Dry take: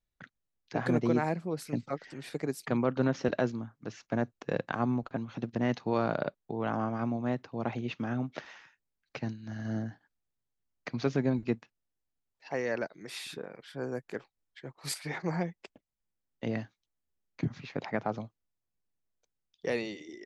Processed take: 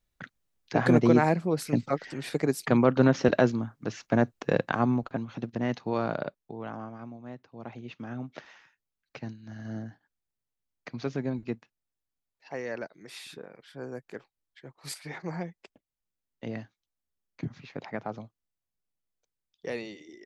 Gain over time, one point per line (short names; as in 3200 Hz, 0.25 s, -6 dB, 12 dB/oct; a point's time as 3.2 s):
4.46 s +7 dB
5.57 s 0 dB
6.16 s 0 dB
7.18 s -12 dB
8.35 s -3 dB